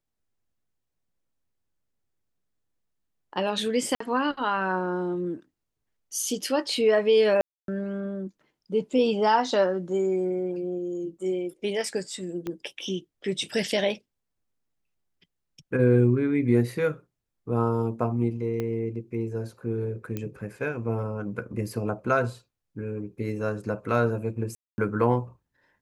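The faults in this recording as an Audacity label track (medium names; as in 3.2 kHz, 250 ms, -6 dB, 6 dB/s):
3.950000	4.000000	dropout 54 ms
7.410000	7.680000	dropout 272 ms
12.470000	12.470000	pop -20 dBFS
18.600000	18.600000	pop -18 dBFS
20.170000	20.170000	pop -18 dBFS
24.550000	24.780000	dropout 230 ms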